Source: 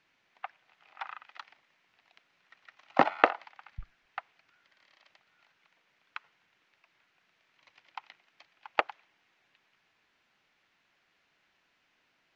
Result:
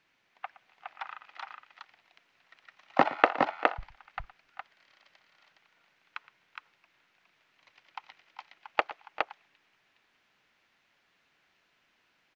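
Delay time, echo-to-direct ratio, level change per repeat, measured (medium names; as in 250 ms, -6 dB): 117 ms, -3.5 dB, no regular repeats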